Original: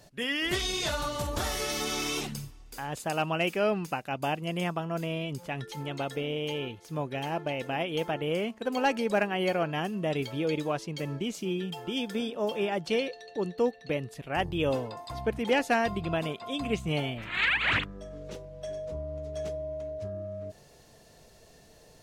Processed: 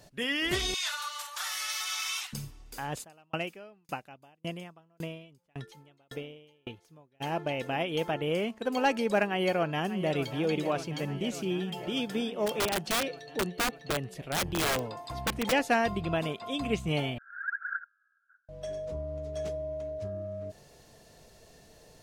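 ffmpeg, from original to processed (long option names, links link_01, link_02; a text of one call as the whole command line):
ffmpeg -i in.wav -filter_complex "[0:a]asettb=1/sr,asplit=3[link_01][link_02][link_03];[link_01]atrim=end=0.744[link_04];[link_02]atrim=start=0.74:end=2.33,asetpts=PTS-STARTPTS,afade=type=in:duration=0.004:curve=qsin,afade=type=out:start_time=1.586:duration=0.004:curve=qsin,highpass=frequency=1100:width=0.5412,highpass=frequency=1100:width=1.3066[link_05];[link_03]atrim=start=2.326[link_06];[link_04][link_05]acrossfade=duration=0.004:curve1=hsin:curve2=qsin[link_07];[link_07][link_06]acrossfade=duration=0.004:curve1=qsin:curve2=hsin,asplit=3[link_08][link_09][link_10];[link_08]afade=type=out:start_time=3.03:duration=0.02[link_11];[link_09]aeval=exprs='val(0)*pow(10,-40*if(lt(mod(1.8*n/s,1),2*abs(1.8)/1000),1-mod(1.8*n/s,1)/(2*abs(1.8)/1000),(mod(1.8*n/s,1)-2*abs(1.8)/1000)/(1-2*abs(1.8)/1000))/20)':channel_layout=same,afade=type=in:start_time=3.03:duration=0.02,afade=type=out:start_time=7.2:duration=0.02[link_12];[link_10]afade=type=in:start_time=7.2:duration=0.02[link_13];[link_11][link_12][link_13]amix=inputs=3:normalize=0,asplit=2[link_14][link_15];[link_15]afade=type=in:start_time=9.25:duration=0.01,afade=type=out:start_time=10.41:duration=0.01,aecho=0:1:590|1180|1770|2360|2950|3540|4130|4720|5310|5900|6490|7080:0.251189|0.188391|0.141294|0.10597|0.0794777|0.0596082|0.0447062|0.0335296|0.0251472|0.0188604|0.0141453|0.010609[link_16];[link_14][link_16]amix=inputs=2:normalize=0,asplit=3[link_17][link_18][link_19];[link_17]afade=type=out:start_time=12.46:duration=0.02[link_20];[link_18]aeval=exprs='(mod(14.1*val(0)+1,2)-1)/14.1':channel_layout=same,afade=type=in:start_time=12.46:duration=0.02,afade=type=out:start_time=15.51:duration=0.02[link_21];[link_19]afade=type=in:start_time=15.51:duration=0.02[link_22];[link_20][link_21][link_22]amix=inputs=3:normalize=0,asettb=1/sr,asplit=3[link_23][link_24][link_25];[link_23]atrim=end=17.184[link_26];[link_24]atrim=start=17.18:end=18.49,asetpts=PTS-STARTPTS,afade=type=in:duration=0.004:curve=qsin,afade=type=out:start_time=1.306:duration=0.004:curve=qsin,asuperpass=centerf=1500:order=8:qfactor=5.4[link_27];[link_25]atrim=start=18.486[link_28];[link_26][link_27]acrossfade=duration=0.004:curve1=hsin:curve2=qsin[link_29];[link_29][link_28]acrossfade=duration=0.004:curve1=qsin:curve2=hsin" out.wav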